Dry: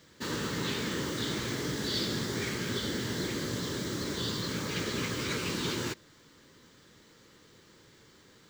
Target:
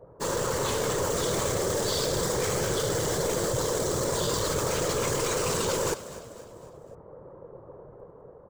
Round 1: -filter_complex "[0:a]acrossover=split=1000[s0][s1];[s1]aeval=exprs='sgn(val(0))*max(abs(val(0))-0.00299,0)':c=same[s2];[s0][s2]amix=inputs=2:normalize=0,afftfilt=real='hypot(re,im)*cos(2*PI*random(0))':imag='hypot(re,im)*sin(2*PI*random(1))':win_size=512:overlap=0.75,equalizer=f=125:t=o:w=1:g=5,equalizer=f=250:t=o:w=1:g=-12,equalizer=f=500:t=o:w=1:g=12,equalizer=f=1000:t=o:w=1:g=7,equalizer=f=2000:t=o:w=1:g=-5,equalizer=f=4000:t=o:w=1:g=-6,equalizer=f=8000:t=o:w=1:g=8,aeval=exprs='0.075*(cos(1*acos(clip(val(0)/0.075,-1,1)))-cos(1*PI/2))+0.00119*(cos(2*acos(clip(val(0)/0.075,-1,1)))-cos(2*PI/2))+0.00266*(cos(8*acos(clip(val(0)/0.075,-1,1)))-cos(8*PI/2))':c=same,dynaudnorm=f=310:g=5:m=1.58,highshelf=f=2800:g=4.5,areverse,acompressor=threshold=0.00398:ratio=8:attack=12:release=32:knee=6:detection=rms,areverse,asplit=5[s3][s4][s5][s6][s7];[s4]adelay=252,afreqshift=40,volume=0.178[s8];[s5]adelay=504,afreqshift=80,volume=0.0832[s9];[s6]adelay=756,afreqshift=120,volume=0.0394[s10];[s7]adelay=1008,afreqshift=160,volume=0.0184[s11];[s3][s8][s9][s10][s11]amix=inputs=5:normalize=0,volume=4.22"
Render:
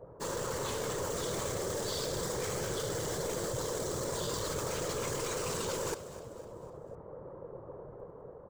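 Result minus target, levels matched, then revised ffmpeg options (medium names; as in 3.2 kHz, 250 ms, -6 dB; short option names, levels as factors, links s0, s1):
compression: peak gain reduction +8 dB
-filter_complex "[0:a]acrossover=split=1000[s0][s1];[s1]aeval=exprs='sgn(val(0))*max(abs(val(0))-0.00299,0)':c=same[s2];[s0][s2]amix=inputs=2:normalize=0,afftfilt=real='hypot(re,im)*cos(2*PI*random(0))':imag='hypot(re,im)*sin(2*PI*random(1))':win_size=512:overlap=0.75,equalizer=f=125:t=o:w=1:g=5,equalizer=f=250:t=o:w=1:g=-12,equalizer=f=500:t=o:w=1:g=12,equalizer=f=1000:t=o:w=1:g=7,equalizer=f=2000:t=o:w=1:g=-5,equalizer=f=4000:t=o:w=1:g=-6,equalizer=f=8000:t=o:w=1:g=8,aeval=exprs='0.075*(cos(1*acos(clip(val(0)/0.075,-1,1)))-cos(1*PI/2))+0.00119*(cos(2*acos(clip(val(0)/0.075,-1,1)))-cos(2*PI/2))+0.00266*(cos(8*acos(clip(val(0)/0.075,-1,1)))-cos(8*PI/2))':c=same,dynaudnorm=f=310:g=5:m=1.58,highshelf=f=2800:g=4.5,areverse,acompressor=threshold=0.0112:ratio=8:attack=12:release=32:knee=6:detection=rms,areverse,asplit=5[s3][s4][s5][s6][s7];[s4]adelay=252,afreqshift=40,volume=0.178[s8];[s5]adelay=504,afreqshift=80,volume=0.0832[s9];[s6]adelay=756,afreqshift=120,volume=0.0394[s10];[s7]adelay=1008,afreqshift=160,volume=0.0184[s11];[s3][s8][s9][s10][s11]amix=inputs=5:normalize=0,volume=4.22"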